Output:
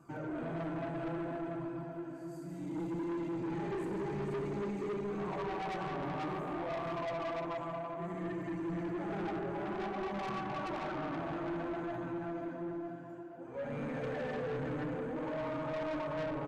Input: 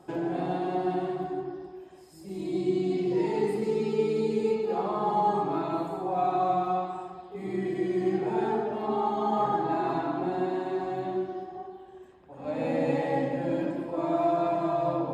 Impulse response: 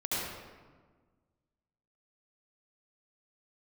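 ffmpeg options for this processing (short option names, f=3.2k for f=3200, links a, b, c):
-filter_complex "[0:a]equalizer=f=160:t=o:w=0.67:g=7,equalizer=f=1.6k:t=o:w=0.67:g=6,equalizer=f=4k:t=o:w=0.67:g=-11,aecho=1:1:437|874|1311|1748|2185:0.596|0.226|0.086|0.0327|0.0124,flanger=delay=0.7:depth=5.9:regen=16:speed=0.63:shape=sinusoidal,lowshelf=f=210:g=-6.5,asplit=2[a][b];[1:a]atrim=start_sample=2205[c];[b][c]afir=irnorm=-1:irlink=0,volume=-12.5dB[d];[a][d]amix=inputs=2:normalize=0,asoftclip=type=tanh:threshold=-31dB,bandreject=f=800:w=13,asetrate=40517,aresample=44100,volume=-3dB"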